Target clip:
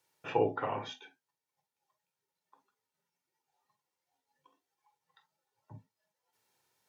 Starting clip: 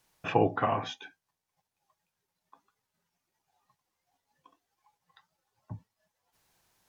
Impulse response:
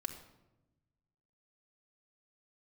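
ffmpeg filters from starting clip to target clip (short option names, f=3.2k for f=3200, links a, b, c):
-filter_complex "[0:a]highpass=160[a];[1:a]atrim=start_sample=2205,atrim=end_sample=3969,asetrate=70560,aresample=44100[b];[a][b]afir=irnorm=-1:irlink=0"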